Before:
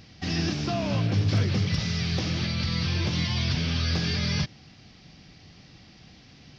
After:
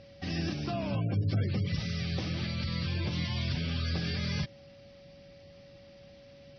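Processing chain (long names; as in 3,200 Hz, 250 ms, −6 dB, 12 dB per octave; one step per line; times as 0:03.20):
gate on every frequency bin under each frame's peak −30 dB strong
Bessel low-pass filter 5,000 Hz
steady tone 560 Hz −47 dBFS
level −5.5 dB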